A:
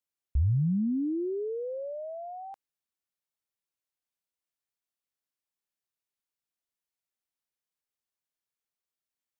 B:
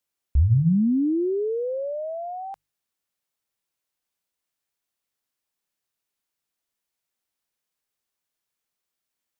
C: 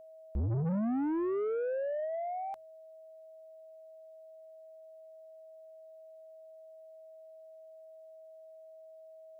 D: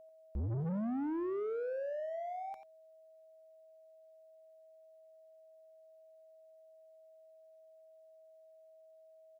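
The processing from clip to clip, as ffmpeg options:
-af "bandreject=f=50:t=h:w=6,bandreject=f=100:t=h:w=6,bandreject=f=150:t=h:w=6,volume=7.5dB"
-af "aeval=exprs='val(0)+0.00447*sin(2*PI*640*n/s)':c=same,asoftclip=type=tanh:threshold=-26.5dB,volume=-3dB"
-filter_complex "[0:a]asplit=2[a][b];[b]adelay=90,highpass=300,lowpass=3.4k,asoftclip=type=hard:threshold=-39.5dB,volume=-10dB[c];[a][c]amix=inputs=2:normalize=0,volume=-4.5dB"

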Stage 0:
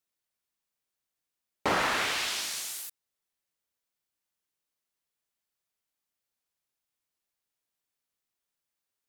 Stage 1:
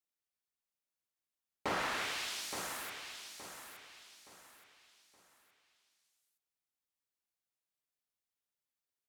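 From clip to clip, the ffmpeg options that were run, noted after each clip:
-af "aecho=1:1:870|1740|2610|3480:0.398|0.139|0.0488|0.0171,volume=-8.5dB"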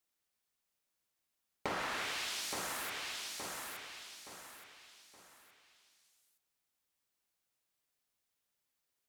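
-af "acompressor=threshold=-45dB:ratio=3,volume=7dB"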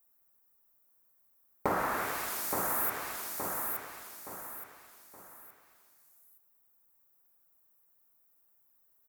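-af "firequalizer=gain_entry='entry(1200,0);entry(3000,-18);entry(15000,12)':delay=0.05:min_phase=1,volume=8.5dB"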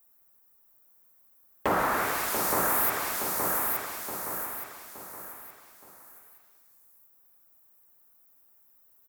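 -af "aeval=exprs='0.178*sin(PI/2*2*val(0)/0.178)':c=same,aecho=1:1:688:0.447,volume=-3.5dB"

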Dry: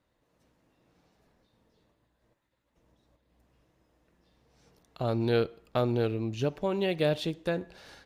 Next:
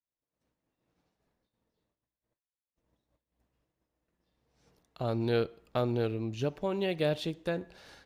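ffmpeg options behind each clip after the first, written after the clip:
-af "agate=range=-33dB:threshold=-60dB:ratio=3:detection=peak,volume=-2.5dB"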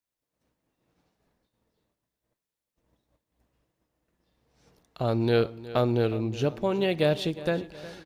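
-af "aecho=1:1:362|724|1086|1448:0.141|0.0664|0.0312|0.0147,volume=5.5dB"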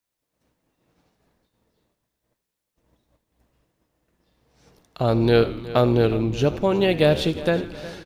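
-filter_complex "[0:a]asplit=7[a][b][c][d][e][f][g];[b]adelay=81,afreqshift=-76,volume=-15.5dB[h];[c]adelay=162,afreqshift=-152,volume=-20.1dB[i];[d]adelay=243,afreqshift=-228,volume=-24.7dB[j];[e]adelay=324,afreqshift=-304,volume=-29.2dB[k];[f]adelay=405,afreqshift=-380,volume=-33.8dB[l];[g]adelay=486,afreqshift=-456,volume=-38.4dB[m];[a][h][i][j][k][l][m]amix=inputs=7:normalize=0,volume=6dB"

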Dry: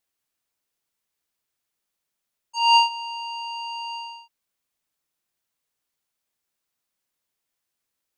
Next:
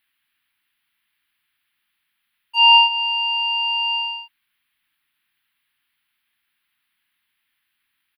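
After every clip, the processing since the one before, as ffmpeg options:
-filter_complex "[0:a]acrossover=split=1200|5900[a][b][c];[a]acompressor=threshold=-20dB:ratio=4[d];[b]acompressor=threshold=-25dB:ratio=4[e];[c]acompressor=threshold=-48dB:ratio=4[f];[d][e][f]amix=inputs=3:normalize=0,firequalizer=gain_entry='entry(310,0);entry(520,-20);entry(830,0);entry(1700,13);entry(3200,12);entry(4600,0);entry(6800,-27);entry(10000,2)':delay=0.05:min_phase=1,volume=3.5dB"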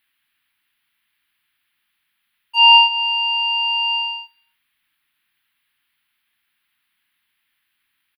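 -af "aecho=1:1:97|194|291:0.0944|0.0359|0.0136,volume=2dB"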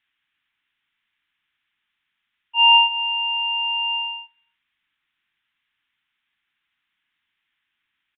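-af "aresample=8000,aresample=44100,volume=-3.5dB"

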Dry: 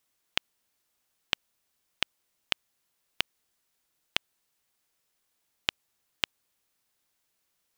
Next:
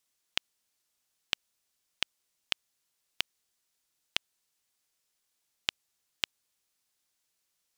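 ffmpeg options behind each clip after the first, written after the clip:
-af "equalizer=f=6.4k:t=o:w=2.3:g=6.5,volume=-6dB"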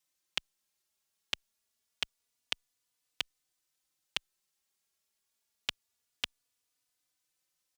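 -filter_complex "[0:a]asplit=2[a][b];[b]adelay=3.4,afreqshift=0.26[c];[a][c]amix=inputs=2:normalize=1"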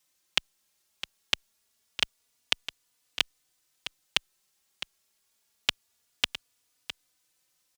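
-af "aecho=1:1:659:0.251,volume=8.5dB"

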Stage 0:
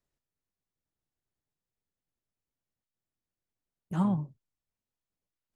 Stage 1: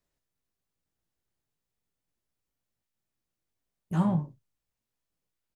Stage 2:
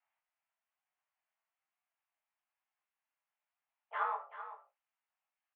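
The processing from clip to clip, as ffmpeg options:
-filter_complex "[0:a]asplit=2[a][b];[b]asoftclip=type=hard:threshold=-29dB,volume=-9dB[c];[a][c]amix=inputs=2:normalize=0,aecho=1:1:18|55:0.531|0.2"
-af "flanger=delay=20:depth=3.6:speed=1.1,highpass=f=460:t=q:w=0.5412,highpass=f=460:t=q:w=1.307,lowpass=f=2.6k:t=q:w=0.5176,lowpass=f=2.6k:t=q:w=0.7071,lowpass=f=2.6k:t=q:w=1.932,afreqshift=270,aecho=1:1:384:0.251,volume=4.5dB"

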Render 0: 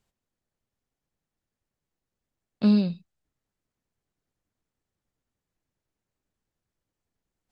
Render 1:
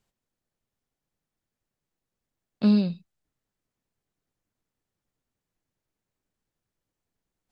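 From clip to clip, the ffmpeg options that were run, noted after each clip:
-af "equalizer=f=66:t=o:w=0.41:g=-7"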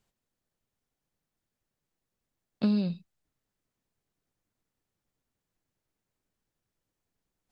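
-af "acompressor=threshold=-23dB:ratio=6"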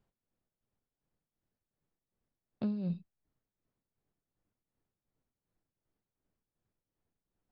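-af "alimiter=level_in=2dB:limit=-24dB:level=0:latency=1,volume=-2dB,lowpass=f=1k:p=1,tremolo=f=2.7:d=0.62,volume=1.5dB"

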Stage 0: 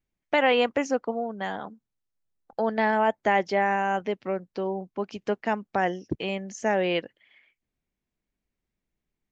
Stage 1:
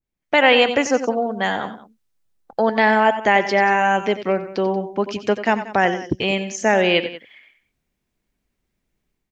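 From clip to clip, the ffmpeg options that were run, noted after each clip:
-af "dynaudnorm=f=100:g=5:m=11.5dB,aecho=1:1:85|93|184:0.133|0.224|0.133,adynamicequalizer=threshold=0.0501:dfrequency=1600:dqfactor=0.7:tfrequency=1600:tqfactor=0.7:attack=5:release=100:ratio=0.375:range=2.5:mode=boostabove:tftype=highshelf,volume=-2.5dB"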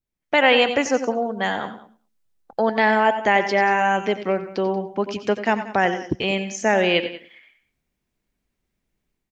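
-af "aecho=1:1:108|216:0.119|0.0345,volume=-2dB"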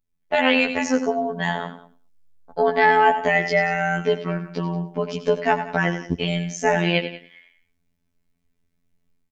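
-af "lowshelf=f=140:g=11,aecho=1:1:4.6:0.75,afftfilt=real='hypot(re,im)*cos(PI*b)':imag='0':win_size=2048:overlap=0.75"

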